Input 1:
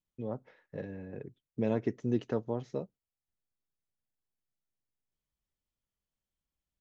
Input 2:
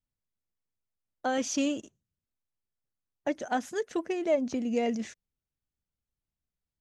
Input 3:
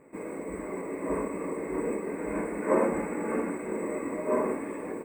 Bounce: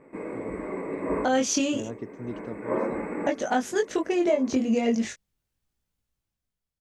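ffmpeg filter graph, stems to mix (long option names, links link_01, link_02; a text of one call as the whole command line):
ffmpeg -i stem1.wav -i stem2.wav -i stem3.wav -filter_complex "[0:a]adelay=150,volume=-5.5dB[link_01];[1:a]acompressor=threshold=-29dB:ratio=6,flanger=delay=17.5:depth=5.6:speed=0.34,dynaudnorm=framelen=200:gausssize=9:maxgain=11.5dB,volume=0.5dB,asplit=2[link_02][link_03];[2:a]lowpass=4200,volume=2.5dB[link_04];[link_03]apad=whole_len=222364[link_05];[link_04][link_05]sidechaincompress=threshold=-38dB:ratio=8:attack=9.7:release=1350[link_06];[link_01][link_02][link_06]amix=inputs=3:normalize=0" out.wav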